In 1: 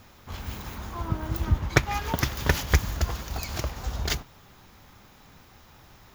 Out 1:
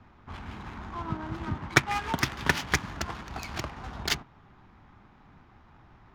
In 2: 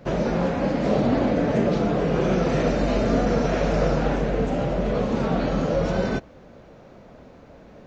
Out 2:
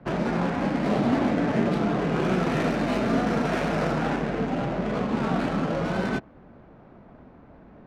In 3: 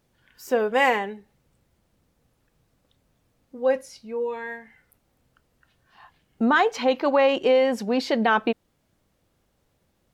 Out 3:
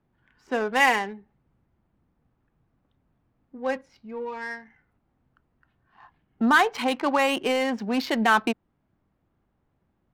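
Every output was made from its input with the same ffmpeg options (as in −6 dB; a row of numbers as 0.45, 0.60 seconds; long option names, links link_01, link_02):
-filter_complex "[0:a]equalizer=frequency=520:width_type=o:width=0.68:gain=-9.5,acrossover=split=120|670[link_01][link_02][link_03];[link_01]acompressor=threshold=-40dB:ratio=6[link_04];[link_04][link_02][link_03]amix=inputs=3:normalize=0,lowshelf=frequency=210:gain=-5,adynamicsmooth=sensitivity=6.5:basefreq=1400,volume=2.5dB"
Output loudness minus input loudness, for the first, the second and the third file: −2.0, −2.5, −1.5 LU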